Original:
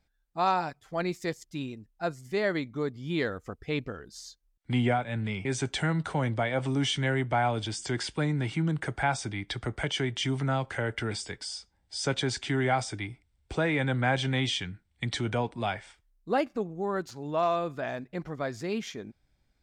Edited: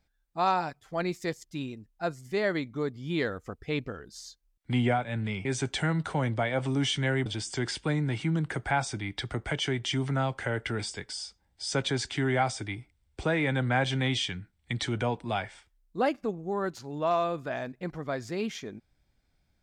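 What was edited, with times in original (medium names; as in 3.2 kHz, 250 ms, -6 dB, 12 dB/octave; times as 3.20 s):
7.26–7.58 s: delete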